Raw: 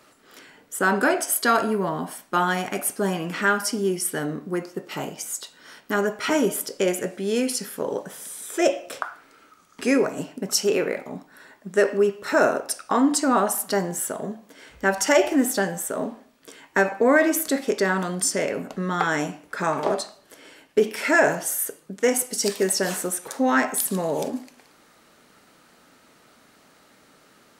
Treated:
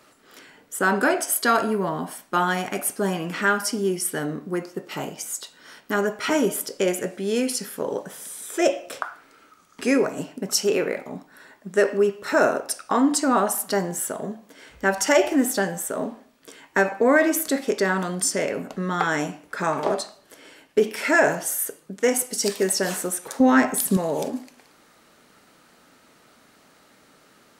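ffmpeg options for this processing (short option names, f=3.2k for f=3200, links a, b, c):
-filter_complex "[0:a]asettb=1/sr,asplit=3[a][b][c];[a]atrim=end=23.404[d];[b]atrim=start=23.4:end=23.97,asetpts=PTS-STARTPTS,afade=t=in:d=0.004:c=qsin,afade=t=out:st=0.566:d=0.004:c=qsin,lowshelf=f=300:g=10.5[e];[c]atrim=start=23.966[f];[d][e]acrossfade=d=0.004:c1=hsin:c2=qsin[g];[g][f]acrossfade=d=0.004:c1=qsin:c2=hsin"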